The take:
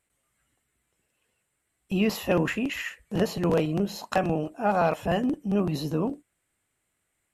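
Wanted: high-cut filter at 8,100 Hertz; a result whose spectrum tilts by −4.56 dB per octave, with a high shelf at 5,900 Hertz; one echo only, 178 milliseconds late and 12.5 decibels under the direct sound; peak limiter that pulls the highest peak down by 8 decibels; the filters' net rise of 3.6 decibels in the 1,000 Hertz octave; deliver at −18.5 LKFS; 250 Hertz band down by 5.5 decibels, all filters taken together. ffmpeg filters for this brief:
ffmpeg -i in.wav -af "lowpass=8100,equalizer=frequency=250:width_type=o:gain=-8.5,equalizer=frequency=1000:width_type=o:gain=6,highshelf=frequency=5900:gain=-5,alimiter=limit=-19dB:level=0:latency=1,aecho=1:1:178:0.237,volume=12dB" out.wav

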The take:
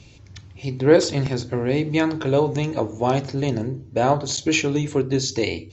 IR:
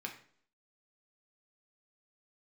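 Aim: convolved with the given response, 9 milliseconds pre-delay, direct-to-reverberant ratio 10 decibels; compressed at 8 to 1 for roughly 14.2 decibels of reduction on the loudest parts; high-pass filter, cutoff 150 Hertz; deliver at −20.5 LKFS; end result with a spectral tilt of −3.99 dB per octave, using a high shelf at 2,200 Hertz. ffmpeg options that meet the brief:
-filter_complex "[0:a]highpass=150,highshelf=frequency=2200:gain=8.5,acompressor=threshold=-23dB:ratio=8,asplit=2[link_01][link_02];[1:a]atrim=start_sample=2205,adelay=9[link_03];[link_02][link_03]afir=irnorm=-1:irlink=0,volume=-10dB[link_04];[link_01][link_04]amix=inputs=2:normalize=0,volume=7dB"

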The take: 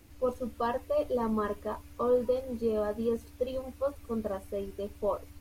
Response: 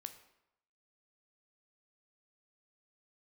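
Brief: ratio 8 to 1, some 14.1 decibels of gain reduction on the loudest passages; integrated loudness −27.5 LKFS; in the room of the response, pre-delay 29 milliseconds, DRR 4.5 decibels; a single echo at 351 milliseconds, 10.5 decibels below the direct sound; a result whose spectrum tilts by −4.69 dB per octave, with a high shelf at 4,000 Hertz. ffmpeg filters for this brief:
-filter_complex "[0:a]highshelf=frequency=4000:gain=-3.5,acompressor=threshold=-38dB:ratio=8,aecho=1:1:351:0.299,asplit=2[link_01][link_02];[1:a]atrim=start_sample=2205,adelay=29[link_03];[link_02][link_03]afir=irnorm=-1:irlink=0,volume=0dB[link_04];[link_01][link_04]amix=inputs=2:normalize=0,volume=14.5dB"

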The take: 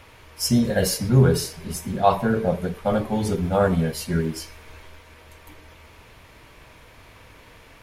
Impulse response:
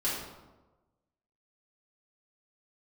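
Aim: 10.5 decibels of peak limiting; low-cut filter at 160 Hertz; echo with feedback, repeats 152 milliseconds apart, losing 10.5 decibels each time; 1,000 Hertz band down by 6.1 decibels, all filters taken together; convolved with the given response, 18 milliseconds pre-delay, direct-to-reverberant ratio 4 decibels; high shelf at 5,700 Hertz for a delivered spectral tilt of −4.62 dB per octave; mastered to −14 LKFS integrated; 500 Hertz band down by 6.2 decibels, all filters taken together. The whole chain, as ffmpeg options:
-filter_complex "[0:a]highpass=160,equalizer=frequency=500:width_type=o:gain=-6,equalizer=frequency=1000:width_type=o:gain=-6,highshelf=frequency=5700:gain=5,alimiter=limit=-19dB:level=0:latency=1,aecho=1:1:152|304|456:0.299|0.0896|0.0269,asplit=2[link_01][link_02];[1:a]atrim=start_sample=2205,adelay=18[link_03];[link_02][link_03]afir=irnorm=-1:irlink=0,volume=-11.5dB[link_04];[link_01][link_04]amix=inputs=2:normalize=0,volume=13dB"

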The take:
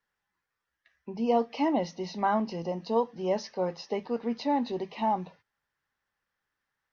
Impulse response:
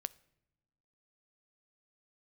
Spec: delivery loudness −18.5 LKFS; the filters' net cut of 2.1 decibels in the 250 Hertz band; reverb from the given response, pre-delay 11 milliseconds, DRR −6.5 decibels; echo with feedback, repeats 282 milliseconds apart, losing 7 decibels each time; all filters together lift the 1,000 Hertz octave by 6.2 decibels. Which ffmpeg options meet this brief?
-filter_complex "[0:a]equalizer=frequency=250:width_type=o:gain=-3,equalizer=frequency=1000:width_type=o:gain=8,aecho=1:1:282|564|846|1128|1410:0.447|0.201|0.0905|0.0407|0.0183,asplit=2[link_01][link_02];[1:a]atrim=start_sample=2205,adelay=11[link_03];[link_02][link_03]afir=irnorm=-1:irlink=0,volume=8.5dB[link_04];[link_01][link_04]amix=inputs=2:normalize=0,volume=1dB"

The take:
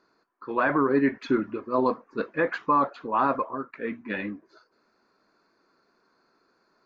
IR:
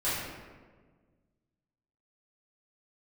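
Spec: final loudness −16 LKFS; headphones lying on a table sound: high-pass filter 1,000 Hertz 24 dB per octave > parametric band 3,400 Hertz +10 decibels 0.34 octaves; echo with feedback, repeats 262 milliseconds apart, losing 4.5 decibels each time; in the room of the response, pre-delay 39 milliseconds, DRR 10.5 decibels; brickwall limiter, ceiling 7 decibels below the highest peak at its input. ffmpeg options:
-filter_complex "[0:a]alimiter=limit=-19dB:level=0:latency=1,aecho=1:1:262|524|786|1048|1310|1572|1834|2096|2358:0.596|0.357|0.214|0.129|0.0772|0.0463|0.0278|0.0167|0.01,asplit=2[link_01][link_02];[1:a]atrim=start_sample=2205,adelay=39[link_03];[link_02][link_03]afir=irnorm=-1:irlink=0,volume=-20dB[link_04];[link_01][link_04]amix=inputs=2:normalize=0,highpass=frequency=1000:width=0.5412,highpass=frequency=1000:width=1.3066,equalizer=frequency=3400:width_type=o:width=0.34:gain=10,volume=18dB"

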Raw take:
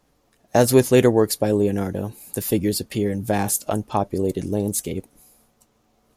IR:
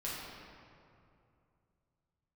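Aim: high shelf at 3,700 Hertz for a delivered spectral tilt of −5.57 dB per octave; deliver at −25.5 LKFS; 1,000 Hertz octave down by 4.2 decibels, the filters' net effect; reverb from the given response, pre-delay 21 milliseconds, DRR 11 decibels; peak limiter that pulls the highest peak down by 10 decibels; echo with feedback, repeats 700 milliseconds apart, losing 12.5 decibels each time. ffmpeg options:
-filter_complex "[0:a]equalizer=frequency=1000:width_type=o:gain=-6,highshelf=frequency=3700:gain=-4,alimiter=limit=-14dB:level=0:latency=1,aecho=1:1:700|1400|2100:0.237|0.0569|0.0137,asplit=2[link_01][link_02];[1:a]atrim=start_sample=2205,adelay=21[link_03];[link_02][link_03]afir=irnorm=-1:irlink=0,volume=-14dB[link_04];[link_01][link_04]amix=inputs=2:normalize=0,volume=-0.5dB"

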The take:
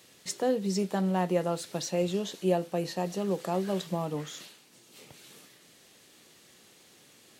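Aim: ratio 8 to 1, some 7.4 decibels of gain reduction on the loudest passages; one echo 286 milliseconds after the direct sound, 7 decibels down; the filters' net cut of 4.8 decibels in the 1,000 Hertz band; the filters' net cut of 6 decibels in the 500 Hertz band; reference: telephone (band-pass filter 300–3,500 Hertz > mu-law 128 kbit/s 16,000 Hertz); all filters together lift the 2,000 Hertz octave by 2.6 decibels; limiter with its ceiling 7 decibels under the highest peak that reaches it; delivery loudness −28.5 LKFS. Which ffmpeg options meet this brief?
ffmpeg -i in.wav -af "equalizer=frequency=500:width_type=o:gain=-5.5,equalizer=frequency=1000:width_type=o:gain=-5,equalizer=frequency=2000:width_type=o:gain=5.5,acompressor=threshold=-33dB:ratio=8,alimiter=level_in=5.5dB:limit=-24dB:level=0:latency=1,volume=-5.5dB,highpass=300,lowpass=3500,aecho=1:1:286:0.447,volume=15.5dB" -ar 16000 -c:a pcm_mulaw out.wav

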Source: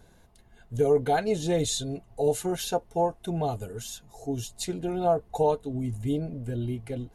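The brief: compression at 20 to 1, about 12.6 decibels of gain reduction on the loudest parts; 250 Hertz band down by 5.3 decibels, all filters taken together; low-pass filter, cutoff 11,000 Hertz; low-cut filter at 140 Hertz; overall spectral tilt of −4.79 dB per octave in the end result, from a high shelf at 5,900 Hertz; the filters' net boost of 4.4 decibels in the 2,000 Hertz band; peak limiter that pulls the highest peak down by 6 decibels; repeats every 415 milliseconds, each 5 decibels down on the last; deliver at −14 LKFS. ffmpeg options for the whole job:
ffmpeg -i in.wav -af "highpass=140,lowpass=11000,equalizer=frequency=250:width_type=o:gain=-7,equalizer=frequency=2000:width_type=o:gain=7,highshelf=frequency=5900:gain=-8.5,acompressor=threshold=-32dB:ratio=20,alimiter=level_in=5.5dB:limit=-24dB:level=0:latency=1,volume=-5.5dB,aecho=1:1:415|830|1245|1660|2075|2490|2905:0.562|0.315|0.176|0.0988|0.0553|0.031|0.0173,volume=24dB" out.wav

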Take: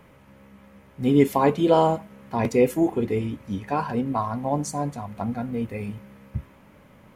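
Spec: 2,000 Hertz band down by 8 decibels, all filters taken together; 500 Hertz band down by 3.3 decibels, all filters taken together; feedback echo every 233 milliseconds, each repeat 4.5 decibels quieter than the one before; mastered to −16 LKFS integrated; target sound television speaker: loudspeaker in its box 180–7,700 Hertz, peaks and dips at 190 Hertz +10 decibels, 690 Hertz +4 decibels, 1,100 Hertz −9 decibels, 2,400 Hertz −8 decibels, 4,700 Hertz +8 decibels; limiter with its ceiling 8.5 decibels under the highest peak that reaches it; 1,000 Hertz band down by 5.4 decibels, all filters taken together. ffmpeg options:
ffmpeg -i in.wav -af "equalizer=frequency=500:width_type=o:gain=-4,equalizer=frequency=1000:width_type=o:gain=-4,equalizer=frequency=2000:width_type=o:gain=-4.5,alimiter=limit=-17dB:level=0:latency=1,highpass=frequency=180:width=0.5412,highpass=frequency=180:width=1.3066,equalizer=frequency=190:width_type=q:width=4:gain=10,equalizer=frequency=690:width_type=q:width=4:gain=4,equalizer=frequency=1100:width_type=q:width=4:gain=-9,equalizer=frequency=2400:width_type=q:width=4:gain=-8,equalizer=frequency=4700:width_type=q:width=4:gain=8,lowpass=frequency=7700:width=0.5412,lowpass=frequency=7700:width=1.3066,aecho=1:1:233|466|699|932|1165|1398|1631|1864|2097:0.596|0.357|0.214|0.129|0.0772|0.0463|0.0278|0.0167|0.01,volume=10.5dB" out.wav

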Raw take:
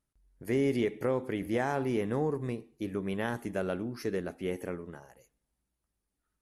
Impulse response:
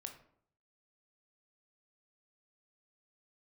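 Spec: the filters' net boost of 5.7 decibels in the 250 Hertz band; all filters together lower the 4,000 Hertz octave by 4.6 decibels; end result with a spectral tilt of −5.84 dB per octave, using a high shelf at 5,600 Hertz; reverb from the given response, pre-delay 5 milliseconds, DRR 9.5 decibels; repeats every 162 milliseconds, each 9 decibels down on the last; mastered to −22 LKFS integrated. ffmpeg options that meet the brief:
-filter_complex "[0:a]equalizer=frequency=250:width_type=o:gain=7,equalizer=frequency=4000:width_type=o:gain=-5,highshelf=frequency=5600:gain=-5.5,aecho=1:1:162|324|486|648:0.355|0.124|0.0435|0.0152,asplit=2[link_01][link_02];[1:a]atrim=start_sample=2205,adelay=5[link_03];[link_02][link_03]afir=irnorm=-1:irlink=0,volume=-5.5dB[link_04];[link_01][link_04]amix=inputs=2:normalize=0,volume=6.5dB"

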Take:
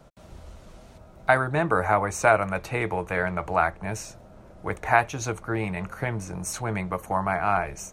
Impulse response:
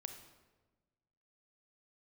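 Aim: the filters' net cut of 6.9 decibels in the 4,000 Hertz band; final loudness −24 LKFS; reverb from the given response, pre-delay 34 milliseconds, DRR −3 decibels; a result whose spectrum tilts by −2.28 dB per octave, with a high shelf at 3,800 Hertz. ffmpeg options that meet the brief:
-filter_complex "[0:a]highshelf=frequency=3800:gain=-8.5,equalizer=frequency=4000:width_type=o:gain=-3.5,asplit=2[link_01][link_02];[1:a]atrim=start_sample=2205,adelay=34[link_03];[link_02][link_03]afir=irnorm=-1:irlink=0,volume=6.5dB[link_04];[link_01][link_04]amix=inputs=2:normalize=0,volume=-2dB"

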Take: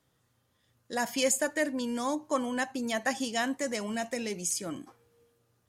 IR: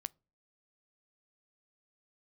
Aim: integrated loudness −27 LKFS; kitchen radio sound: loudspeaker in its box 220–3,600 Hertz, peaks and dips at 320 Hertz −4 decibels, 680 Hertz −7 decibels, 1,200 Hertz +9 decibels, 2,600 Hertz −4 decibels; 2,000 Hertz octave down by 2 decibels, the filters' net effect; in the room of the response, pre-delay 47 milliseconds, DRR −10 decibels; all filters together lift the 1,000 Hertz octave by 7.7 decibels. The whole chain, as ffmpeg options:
-filter_complex "[0:a]equalizer=frequency=1000:width_type=o:gain=8.5,equalizer=frequency=2000:width_type=o:gain=-5.5,asplit=2[link_01][link_02];[1:a]atrim=start_sample=2205,adelay=47[link_03];[link_02][link_03]afir=irnorm=-1:irlink=0,volume=12.5dB[link_04];[link_01][link_04]amix=inputs=2:normalize=0,highpass=220,equalizer=frequency=320:width_type=q:width=4:gain=-4,equalizer=frequency=680:width_type=q:width=4:gain=-7,equalizer=frequency=1200:width_type=q:width=4:gain=9,equalizer=frequency=2600:width_type=q:width=4:gain=-4,lowpass=frequency=3600:width=0.5412,lowpass=frequency=3600:width=1.3066,volume=-6.5dB"

